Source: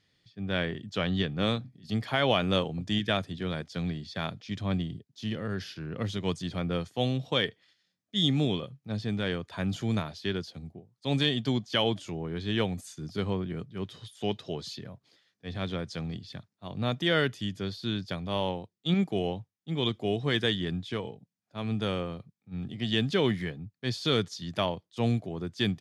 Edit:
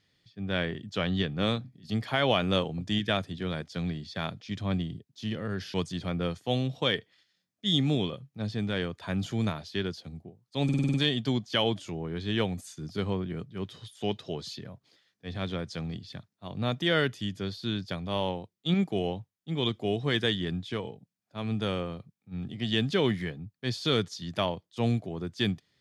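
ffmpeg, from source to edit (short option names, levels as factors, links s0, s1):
-filter_complex "[0:a]asplit=8[s0][s1][s2][s3][s4][s5][s6][s7];[s0]atrim=end=5.742[s8];[s1]atrim=start=6.238:end=11.192[s9];[s2]atrim=start=11.138:end=11.192[s10];[s3]atrim=start=11.138:end=11.192[s11];[s4]atrim=start=11.138:end=11.192[s12];[s5]atrim=start=11.138:end=11.192[s13];[s6]atrim=start=11.138:end=11.192[s14];[s7]atrim=start=11.138[s15];[s8][s9]acrossfade=d=0.004:c1=hsin:c2=hsin[s16];[s16][s10]acrossfade=d=0.004:c1=hsin:c2=hsin[s17];[s17][s11]acrossfade=d=0.004:c1=hsin:c2=hsin[s18];[s18][s12]acrossfade=d=0.004:c1=hsin:c2=hsin[s19];[s19][s13]acrossfade=d=0.004:c1=hsin:c2=hsin[s20];[s20][s14]acrossfade=d=0.004:c1=hsin:c2=hsin[s21];[s21][s15]acrossfade=d=0.004:c1=hsin:c2=hsin"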